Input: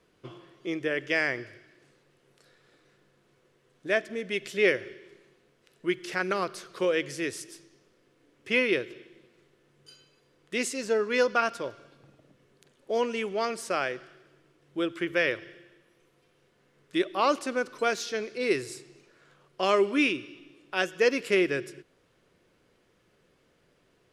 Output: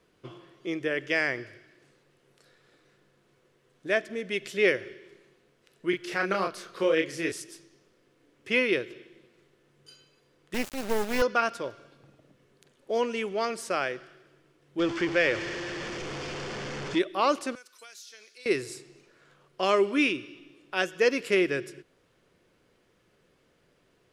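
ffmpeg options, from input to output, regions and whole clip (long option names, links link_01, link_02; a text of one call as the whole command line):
ffmpeg -i in.wav -filter_complex "[0:a]asettb=1/sr,asplit=3[link_01][link_02][link_03];[link_01]atrim=end=5.904[link_04];[link_02]atrim=start=5.9:end=7.32,asetpts=PTS-STARTPTS,afade=type=in:duration=0.004:curve=qsin,afade=type=out:start_time=1.416:duration=0.004:curve=qsin,equalizer=frequency=8400:width=0.7:gain=-3.5,asplit=2[link_05][link_06];[link_06]adelay=31,volume=-3.5dB[link_07];[link_05][link_07]amix=inputs=2:normalize=0,atrim=end_sample=62622[link_08];[link_03]atrim=start=7.316[link_09];[link_04][link_08]acrossfade=duration=0.004:curve1=hsin:curve2=qsin[link_10];[link_10][link_09]acrossfade=duration=0.004:curve1=qsin:curve2=hsin,asettb=1/sr,asplit=3[link_11][link_12][link_13];[link_11]atrim=end=10.544[link_14];[link_12]atrim=start=10.54:end=11.22,asetpts=PTS-STARTPTS,afade=type=in:duration=0.004:curve=qsin,afade=type=out:start_time=0.676:duration=0.004:curve=qsin,equalizer=frequency=71:width=0.31:gain=9,adynamicsmooth=sensitivity=2.5:basefreq=3900,acrusher=bits=3:dc=4:mix=0:aa=0.000001[link_15];[link_13]atrim=start=11.216[link_16];[link_14][link_15]acrossfade=duration=0.004:curve1=hsin:curve2=qsin[link_17];[link_17][link_16]acrossfade=duration=0.004:curve1=qsin:curve2=hsin,asettb=1/sr,asplit=3[link_18][link_19][link_20];[link_18]atrim=end=14.794[link_21];[link_19]atrim=start=14.79:end=16.99,asetpts=PTS-STARTPTS,afade=type=in:duration=0.004:curve=qsin,afade=type=out:start_time=2.196:duration=0.004:curve=qsin,aeval=exprs='val(0)+0.5*0.0335*sgn(val(0))':channel_layout=same,lowpass=frequency=6200:width=0.5412,lowpass=frequency=6200:width=1.3066,bandreject=frequency=3900:width=8.4[link_22];[link_20]atrim=start=16.986[link_23];[link_21][link_22]acrossfade=duration=0.004:curve1=hsin:curve2=qsin[link_24];[link_24][link_23]acrossfade=duration=0.004:curve1=qsin:curve2=hsin,asettb=1/sr,asplit=3[link_25][link_26][link_27];[link_25]atrim=end=17.554[link_28];[link_26]atrim=start=17.55:end=18.46,asetpts=PTS-STARTPTS,afade=type=in:duration=0.004:curve=qsin,afade=type=out:start_time=0.906:duration=0.004:curve=qsin,aderivative,acompressor=threshold=-44dB:ratio=6:attack=3.2:release=140:knee=1:detection=peak[link_29];[link_27]atrim=start=18.456[link_30];[link_28][link_29]acrossfade=duration=0.004:curve1=hsin:curve2=qsin[link_31];[link_31][link_30]acrossfade=duration=0.004:curve1=qsin:curve2=hsin" out.wav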